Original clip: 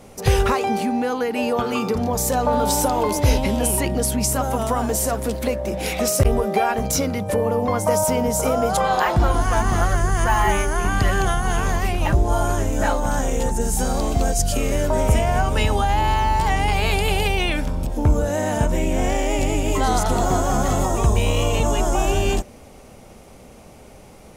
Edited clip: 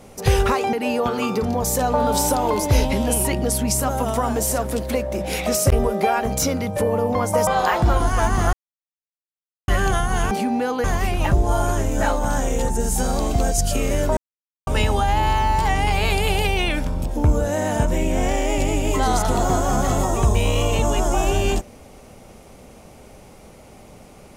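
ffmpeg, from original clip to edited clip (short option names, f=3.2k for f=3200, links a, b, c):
-filter_complex "[0:a]asplit=9[a][b][c][d][e][f][g][h][i];[a]atrim=end=0.732[j];[b]atrim=start=1.258:end=8.002[k];[c]atrim=start=8.808:end=9.87,asetpts=PTS-STARTPTS,afade=t=out:st=1.058:d=0.004:c=hsin[l];[d]atrim=start=9.87:end=11.02,asetpts=PTS-STARTPTS,volume=0[m];[e]atrim=start=11.02:end=11.652,asetpts=PTS-STARTPTS,afade=t=in:d=0.004:c=hsin[n];[f]atrim=start=0.728:end=1.262[o];[g]atrim=start=11.648:end=14.98,asetpts=PTS-STARTPTS,afade=t=out:st=3.328:d=0.004:c=hsin[p];[h]atrim=start=14.98:end=15.48,asetpts=PTS-STARTPTS,volume=0[q];[i]atrim=start=15.48,asetpts=PTS-STARTPTS,afade=t=in:d=0.004:c=hsin[r];[j][k]acrossfade=d=0.004:c1=hsin:c2=hsin[s];[l][m][n]concat=n=3:v=0:a=1[t];[s][t]acrossfade=d=0.004:c1=hsin:c2=hsin[u];[u][o]acrossfade=d=0.004:c1=hsin:c2=hsin[v];[p][q][r]concat=n=3:v=0:a=1[w];[v][w]acrossfade=d=0.004:c1=hsin:c2=hsin"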